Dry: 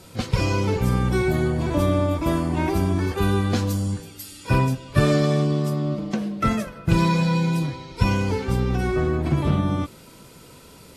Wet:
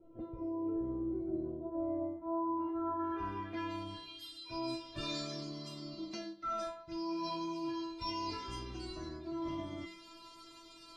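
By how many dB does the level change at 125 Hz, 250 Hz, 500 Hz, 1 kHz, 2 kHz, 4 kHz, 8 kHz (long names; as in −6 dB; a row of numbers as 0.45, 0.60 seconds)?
−29.5, −15.0, −16.5, −12.0, −21.0, −10.0, −17.5 decibels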